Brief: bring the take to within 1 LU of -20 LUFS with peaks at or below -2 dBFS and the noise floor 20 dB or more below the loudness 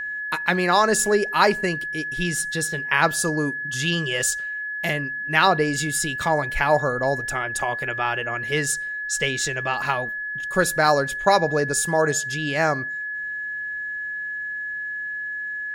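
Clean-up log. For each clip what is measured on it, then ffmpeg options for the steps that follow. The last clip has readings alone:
steady tone 1.7 kHz; tone level -27 dBFS; loudness -22.5 LUFS; peak level -3.0 dBFS; loudness target -20.0 LUFS
-> -af "bandreject=f=1700:w=30"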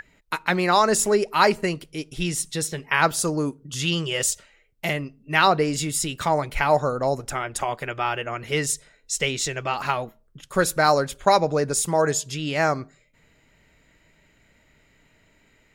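steady tone not found; loudness -23.0 LUFS; peak level -3.0 dBFS; loudness target -20.0 LUFS
-> -af "volume=1.41,alimiter=limit=0.794:level=0:latency=1"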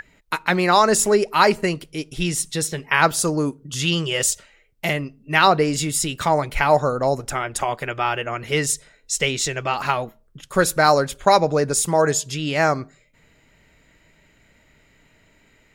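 loudness -20.5 LUFS; peak level -2.0 dBFS; noise floor -58 dBFS

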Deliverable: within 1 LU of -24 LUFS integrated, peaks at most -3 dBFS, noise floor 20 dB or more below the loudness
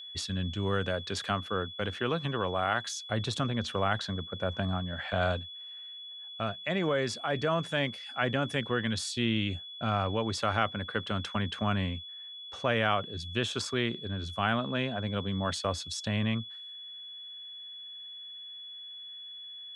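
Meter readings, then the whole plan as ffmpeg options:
steady tone 3.4 kHz; tone level -42 dBFS; loudness -32.5 LUFS; peak level -12.5 dBFS; loudness target -24.0 LUFS
-> -af "bandreject=f=3400:w=30"
-af "volume=2.66"

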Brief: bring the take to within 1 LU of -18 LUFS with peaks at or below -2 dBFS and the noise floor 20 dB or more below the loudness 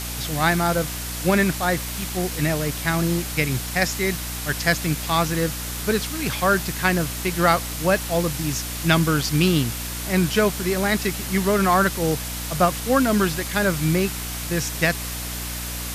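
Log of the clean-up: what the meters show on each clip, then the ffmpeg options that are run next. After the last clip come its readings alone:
hum 60 Hz; highest harmonic 300 Hz; hum level -31 dBFS; noise floor -30 dBFS; noise floor target -42 dBFS; loudness -22.0 LUFS; peak level -2.5 dBFS; loudness target -18.0 LUFS
-> -af "bandreject=f=60:t=h:w=6,bandreject=f=120:t=h:w=6,bandreject=f=180:t=h:w=6,bandreject=f=240:t=h:w=6,bandreject=f=300:t=h:w=6"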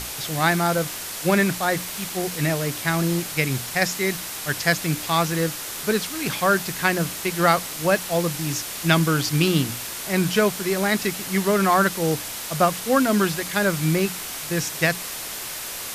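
hum not found; noise floor -33 dBFS; noise floor target -43 dBFS
-> -af "afftdn=nr=10:nf=-33"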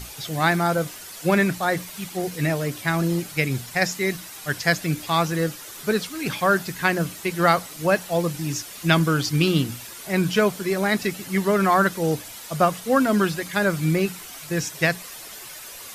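noise floor -39 dBFS; noise floor target -43 dBFS
-> -af "afftdn=nr=6:nf=-39"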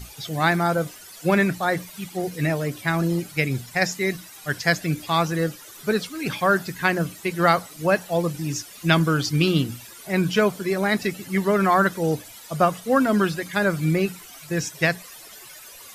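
noise floor -44 dBFS; loudness -23.0 LUFS; peak level -2.5 dBFS; loudness target -18.0 LUFS
-> -af "volume=1.78,alimiter=limit=0.794:level=0:latency=1"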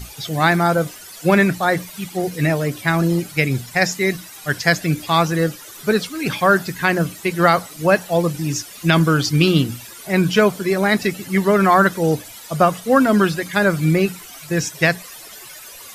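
loudness -18.5 LUFS; peak level -2.0 dBFS; noise floor -39 dBFS

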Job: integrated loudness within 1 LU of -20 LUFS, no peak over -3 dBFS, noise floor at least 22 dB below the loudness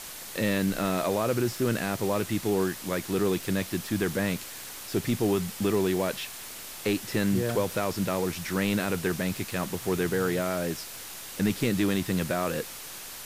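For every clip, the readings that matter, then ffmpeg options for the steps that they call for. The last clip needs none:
noise floor -41 dBFS; noise floor target -51 dBFS; loudness -28.5 LUFS; peak level -14.5 dBFS; loudness target -20.0 LUFS
-> -af "afftdn=nr=10:nf=-41"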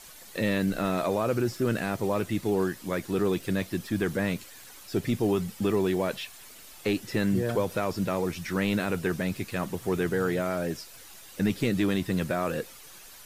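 noise floor -48 dBFS; noise floor target -51 dBFS
-> -af "afftdn=nr=6:nf=-48"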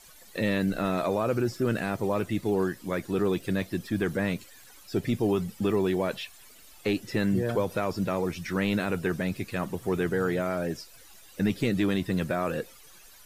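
noise floor -52 dBFS; loudness -29.0 LUFS; peak level -15.5 dBFS; loudness target -20.0 LUFS
-> -af "volume=2.82"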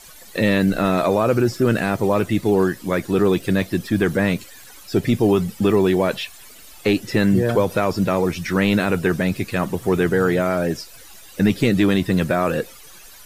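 loudness -20.0 LUFS; peak level -6.5 dBFS; noise floor -43 dBFS

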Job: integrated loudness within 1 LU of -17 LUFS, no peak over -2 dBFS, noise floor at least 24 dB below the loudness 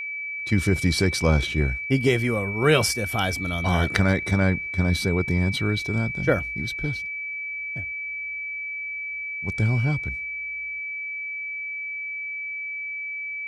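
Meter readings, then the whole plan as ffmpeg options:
steady tone 2.3 kHz; tone level -29 dBFS; loudness -24.5 LUFS; peak level -5.0 dBFS; loudness target -17.0 LUFS
-> -af "bandreject=f=2300:w=30"
-af "volume=2.37,alimiter=limit=0.794:level=0:latency=1"

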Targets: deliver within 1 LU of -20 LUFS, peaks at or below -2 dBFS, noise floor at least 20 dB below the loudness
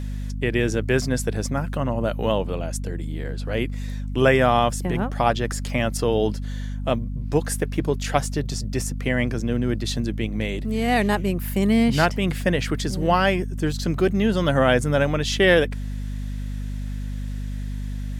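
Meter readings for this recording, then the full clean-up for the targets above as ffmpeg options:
hum 50 Hz; highest harmonic 250 Hz; hum level -26 dBFS; loudness -23.5 LUFS; peak level -3.0 dBFS; loudness target -20.0 LUFS
-> -af "bandreject=f=50:t=h:w=4,bandreject=f=100:t=h:w=4,bandreject=f=150:t=h:w=4,bandreject=f=200:t=h:w=4,bandreject=f=250:t=h:w=4"
-af "volume=1.5,alimiter=limit=0.794:level=0:latency=1"

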